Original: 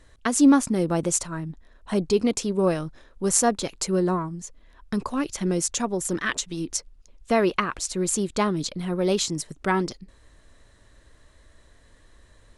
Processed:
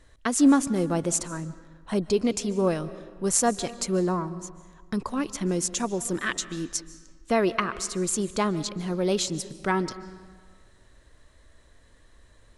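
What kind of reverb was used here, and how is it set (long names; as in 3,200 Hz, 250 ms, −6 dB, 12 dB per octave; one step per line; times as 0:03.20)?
comb and all-pass reverb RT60 1.6 s, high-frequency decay 0.7×, pre-delay 105 ms, DRR 15.5 dB
level −2 dB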